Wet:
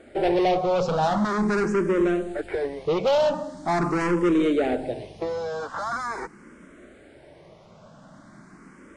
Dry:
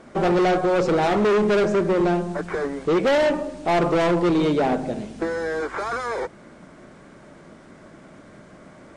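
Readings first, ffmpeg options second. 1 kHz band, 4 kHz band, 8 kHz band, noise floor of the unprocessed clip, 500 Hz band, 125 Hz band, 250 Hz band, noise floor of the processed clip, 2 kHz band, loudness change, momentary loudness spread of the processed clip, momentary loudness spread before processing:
-2.0 dB, -3.0 dB, -2.5 dB, -47 dBFS, -3.0 dB, -3.5 dB, -2.0 dB, -51 dBFS, -4.0 dB, -3.0 dB, 10 LU, 9 LU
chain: -filter_complex "[0:a]asplit=2[a][b];[b]afreqshift=0.43[c];[a][c]amix=inputs=2:normalize=1"

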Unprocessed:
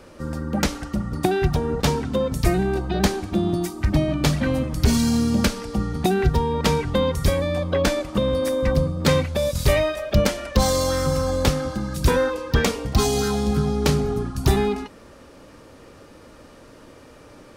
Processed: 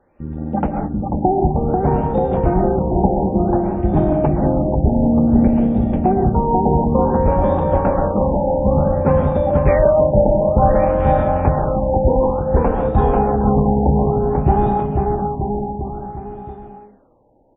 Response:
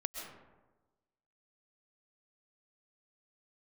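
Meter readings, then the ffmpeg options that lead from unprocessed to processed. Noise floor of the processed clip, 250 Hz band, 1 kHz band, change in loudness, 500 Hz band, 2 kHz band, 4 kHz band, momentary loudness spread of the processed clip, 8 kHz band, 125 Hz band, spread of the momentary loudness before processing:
-45 dBFS, +6.0 dB, +10.0 dB, +5.5 dB, +6.5 dB, -6.5 dB, under -25 dB, 8 LU, under -40 dB, +4.5 dB, 4 LU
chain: -filter_complex "[0:a]afwtdn=0.0631,equalizer=f=800:t=o:w=0.33:g=10,equalizer=f=1.25k:t=o:w=0.33:g=-5,equalizer=f=3.15k:t=o:w=0.33:g=-7,aecho=1:1:490|931|1328|1685|2007:0.631|0.398|0.251|0.158|0.1[a];[1:a]atrim=start_sample=2205,afade=t=out:st=0.27:d=0.01,atrim=end_sample=12348[b];[a][b]afir=irnorm=-1:irlink=0,afftfilt=real='re*lt(b*sr/1024,940*pow(3800/940,0.5+0.5*sin(2*PI*0.56*pts/sr)))':imag='im*lt(b*sr/1024,940*pow(3800/940,0.5+0.5*sin(2*PI*0.56*pts/sr)))':win_size=1024:overlap=0.75,volume=3.5dB"

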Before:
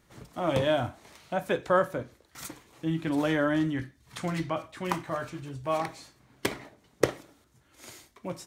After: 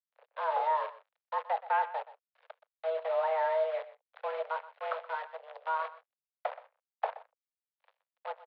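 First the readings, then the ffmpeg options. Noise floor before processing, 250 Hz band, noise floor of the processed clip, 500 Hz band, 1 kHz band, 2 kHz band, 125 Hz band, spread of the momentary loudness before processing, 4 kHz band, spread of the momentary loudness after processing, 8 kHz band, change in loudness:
-65 dBFS, under -40 dB, under -85 dBFS, -4.0 dB, +2.5 dB, -5.5 dB, under -40 dB, 18 LU, -13.0 dB, 15 LU, under -35 dB, -4.0 dB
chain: -filter_complex "[0:a]aeval=exprs='val(0)+0.000891*(sin(2*PI*50*n/s)+sin(2*PI*2*50*n/s)/2+sin(2*PI*3*50*n/s)/3+sin(2*PI*4*50*n/s)/4+sin(2*PI*5*50*n/s)/5)':c=same,acrossover=split=1500[a][b];[b]acompressor=threshold=-51dB:ratio=5[c];[a][c]amix=inputs=2:normalize=0,aeval=exprs='sgn(val(0))*max(abs(val(0))-0.00562,0)':c=same,acrusher=bits=7:dc=4:mix=0:aa=0.000001,asoftclip=type=tanh:threshold=-19.5dB,highshelf=f=2.2k:g=-11,asplit=2[d][e];[e]aecho=0:1:124:0.15[f];[d][f]amix=inputs=2:normalize=0,highpass=f=180:t=q:w=0.5412,highpass=f=180:t=q:w=1.307,lowpass=f=3.6k:t=q:w=0.5176,lowpass=f=3.6k:t=q:w=0.7071,lowpass=f=3.6k:t=q:w=1.932,afreqshift=320"

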